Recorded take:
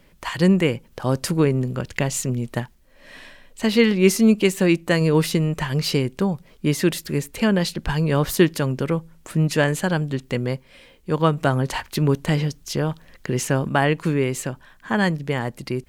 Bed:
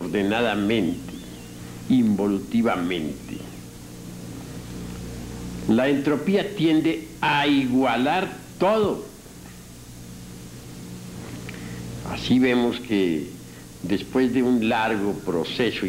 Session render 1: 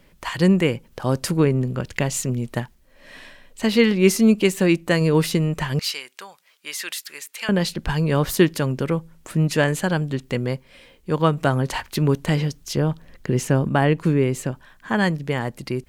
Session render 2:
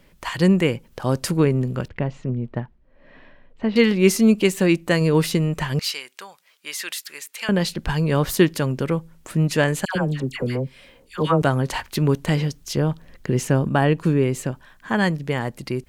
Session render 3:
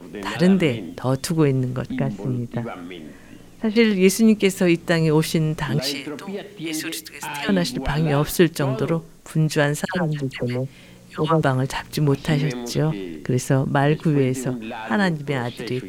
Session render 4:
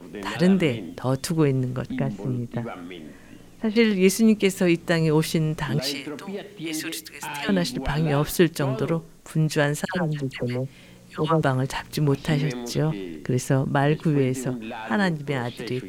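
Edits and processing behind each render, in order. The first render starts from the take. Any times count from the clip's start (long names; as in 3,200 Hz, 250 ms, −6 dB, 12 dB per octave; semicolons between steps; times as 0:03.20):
0:01.37–0:01.82: bass and treble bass +1 dB, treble −3 dB; 0:05.79–0:07.49: high-pass filter 1,400 Hz; 0:12.77–0:14.52: tilt shelving filter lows +3.5 dB, about 650 Hz
0:01.88–0:03.76: head-to-tape spacing loss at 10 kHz 44 dB; 0:09.85–0:11.42: all-pass dispersion lows, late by 105 ms, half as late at 1,200 Hz; 0:13.60–0:14.25: notch filter 2,100 Hz, Q 11
mix in bed −10 dB
level −2.5 dB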